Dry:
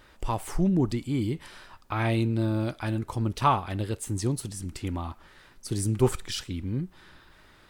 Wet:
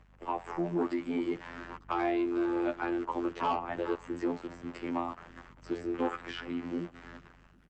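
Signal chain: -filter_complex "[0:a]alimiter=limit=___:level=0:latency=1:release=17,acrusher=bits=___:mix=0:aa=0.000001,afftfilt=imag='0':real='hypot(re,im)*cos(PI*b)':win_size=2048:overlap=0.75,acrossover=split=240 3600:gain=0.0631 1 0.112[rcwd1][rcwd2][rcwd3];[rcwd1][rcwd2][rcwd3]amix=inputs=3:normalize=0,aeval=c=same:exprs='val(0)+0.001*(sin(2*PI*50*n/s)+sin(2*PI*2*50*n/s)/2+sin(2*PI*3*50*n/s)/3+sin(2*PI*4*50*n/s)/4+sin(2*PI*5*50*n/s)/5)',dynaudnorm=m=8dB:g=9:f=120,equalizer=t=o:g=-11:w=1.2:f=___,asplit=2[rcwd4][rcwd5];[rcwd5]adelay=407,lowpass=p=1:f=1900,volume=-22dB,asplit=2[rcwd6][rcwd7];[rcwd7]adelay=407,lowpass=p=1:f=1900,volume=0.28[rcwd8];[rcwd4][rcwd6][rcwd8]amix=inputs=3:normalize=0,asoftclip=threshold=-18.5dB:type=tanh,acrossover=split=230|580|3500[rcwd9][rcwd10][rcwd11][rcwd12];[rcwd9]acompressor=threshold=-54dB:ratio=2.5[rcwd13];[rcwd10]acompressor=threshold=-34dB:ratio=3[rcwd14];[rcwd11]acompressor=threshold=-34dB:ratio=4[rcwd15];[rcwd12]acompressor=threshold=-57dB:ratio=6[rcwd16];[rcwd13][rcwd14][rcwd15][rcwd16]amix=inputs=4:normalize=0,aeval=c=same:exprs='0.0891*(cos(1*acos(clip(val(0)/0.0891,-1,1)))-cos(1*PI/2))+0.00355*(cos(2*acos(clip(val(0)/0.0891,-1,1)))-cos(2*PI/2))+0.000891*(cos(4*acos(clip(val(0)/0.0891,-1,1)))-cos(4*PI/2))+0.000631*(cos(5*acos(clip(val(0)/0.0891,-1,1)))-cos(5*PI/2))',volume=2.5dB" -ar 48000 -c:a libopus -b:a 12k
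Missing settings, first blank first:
-12.5dB, 7, 3700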